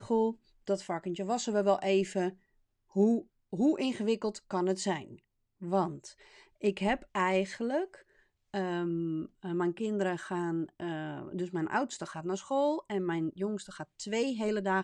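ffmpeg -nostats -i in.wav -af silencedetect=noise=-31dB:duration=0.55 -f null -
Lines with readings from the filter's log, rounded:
silence_start: 2.29
silence_end: 2.96 | silence_duration: 0.67
silence_start: 4.97
silence_end: 5.67 | silence_duration: 0.70
silence_start: 5.88
silence_end: 6.64 | silence_duration: 0.76
silence_start: 7.84
silence_end: 8.54 | silence_duration: 0.70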